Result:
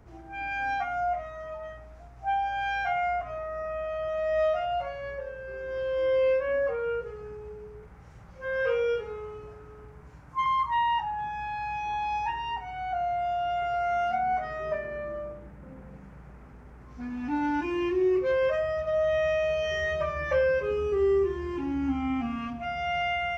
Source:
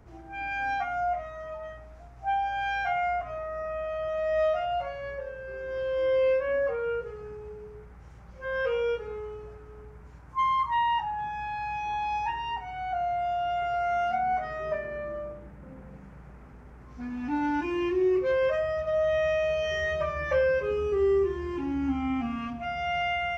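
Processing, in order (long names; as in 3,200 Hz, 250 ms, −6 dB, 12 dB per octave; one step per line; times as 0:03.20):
0:07.78–0:10.46: double-tracking delay 44 ms −5 dB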